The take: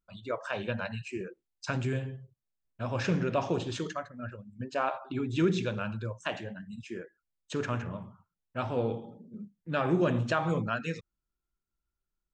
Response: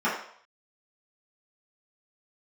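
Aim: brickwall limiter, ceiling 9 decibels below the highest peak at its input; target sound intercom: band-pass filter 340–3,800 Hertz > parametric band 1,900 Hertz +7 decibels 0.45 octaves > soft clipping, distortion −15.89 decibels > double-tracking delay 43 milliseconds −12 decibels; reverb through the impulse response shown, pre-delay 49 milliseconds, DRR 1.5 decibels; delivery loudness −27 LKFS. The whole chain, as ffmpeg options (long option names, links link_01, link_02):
-filter_complex "[0:a]alimiter=limit=-23.5dB:level=0:latency=1,asplit=2[link_01][link_02];[1:a]atrim=start_sample=2205,adelay=49[link_03];[link_02][link_03]afir=irnorm=-1:irlink=0,volume=-16dB[link_04];[link_01][link_04]amix=inputs=2:normalize=0,highpass=340,lowpass=3800,equalizer=frequency=1900:width_type=o:width=0.45:gain=7,asoftclip=threshold=-28.5dB,asplit=2[link_05][link_06];[link_06]adelay=43,volume=-12dB[link_07];[link_05][link_07]amix=inputs=2:normalize=0,volume=10.5dB"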